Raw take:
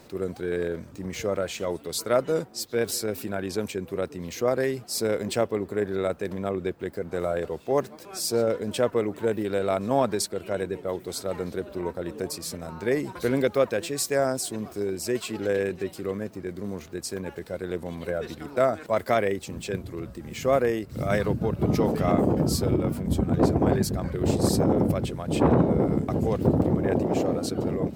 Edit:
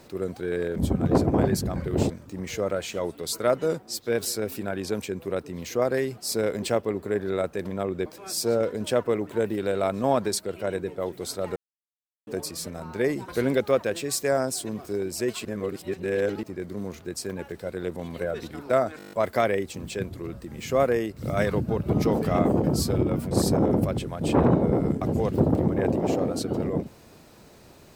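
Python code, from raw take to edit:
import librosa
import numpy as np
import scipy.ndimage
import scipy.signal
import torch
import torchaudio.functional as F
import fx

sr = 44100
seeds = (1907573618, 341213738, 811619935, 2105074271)

y = fx.edit(x, sr, fx.cut(start_s=6.72, length_s=1.21),
    fx.silence(start_s=11.43, length_s=0.71),
    fx.reverse_span(start_s=15.32, length_s=0.98),
    fx.stutter(start_s=18.85, slice_s=0.02, count=8),
    fx.move(start_s=23.04, length_s=1.34, to_s=0.76), tone=tone)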